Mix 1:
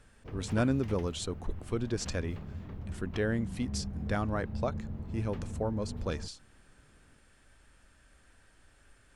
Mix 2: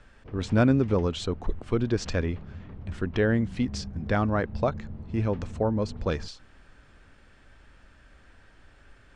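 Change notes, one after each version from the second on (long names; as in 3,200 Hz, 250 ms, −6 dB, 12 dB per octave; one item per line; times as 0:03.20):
speech +7.5 dB
master: add high-frequency loss of the air 120 metres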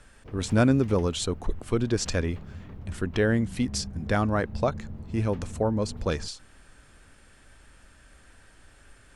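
master: remove high-frequency loss of the air 120 metres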